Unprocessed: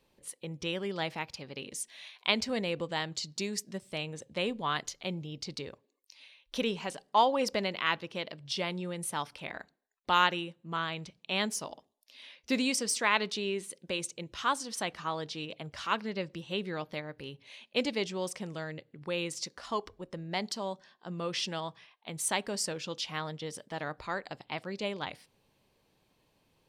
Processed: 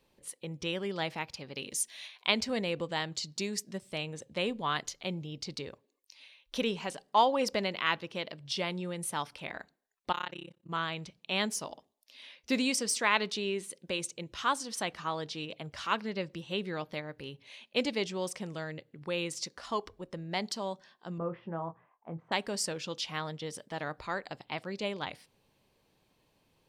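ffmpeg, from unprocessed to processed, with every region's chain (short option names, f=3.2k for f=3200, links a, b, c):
-filter_complex "[0:a]asettb=1/sr,asplit=3[a][b][c];[a]atrim=end=1.554[d];[b]atrim=start=1.55:end=2.07,asetpts=PTS-STARTPTS,afade=t=in:d=0.004:c=qsin,afade=t=out:st=0.516:d=0.004:c=qsin,highshelf=f=3.8k:g=7.5,bandreject=f=8k:w=12[e];[c]atrim=start=2.066[f];[d][e]acrossfade=d=0.004:c1=hsin:c2=qsin[g];[g][f]acrossfade=d=0.004:c1=qsin:c2=hsin,asettb=1/sr,asplit=3[h][i][j];[h]atrim=end=10.124[k];[i]atrim=start=10.12:end=10.7,asetpts=PTS-STARTPTS,afade=t=in:d=0.004:c=qsin,afade=t=out:st=0.576:d=0.004:c=qsin,tremolo=f=33:d=1,acompressor=threshold=-47dB:ratio=1.5:attack=3.2:release=140:knee=1:detection=peak[l];[j]atrim=start=10.696[m];[k][l]acrossfade=d=0.004:c1=hsin:c2=qsin[n];[n][m]acrossfade=d=0.004:c1=qsin:c2=hsin,asettb=1/sr,asplit=3[o][p][q];[o]atrim=end=21.184[r];[p]atrim=start=21.18:end=22.32,asetpts=PTS-STARTPTS,afade=t=in:d=0.004:c=qsin,afade=t=out:st=1.136:d=0.004:c=qsin,lowpass=f=1.3k:w=0.5412,lowpass=f=1.3k:w=1.3066,asplit=2[s][t];[t]adelay=24,volume=-8.5dB[u];[s][u]amix=inputs=2:normalize=0,atrim=end_sample=50274[v];[q]atrim=start=22.316[w];[r][v]acrossfade=d=0.004:c1=hsin:c2=qsin[x];[x][w]acrossfade=d=0.004:c1=qsin:c2=hsin"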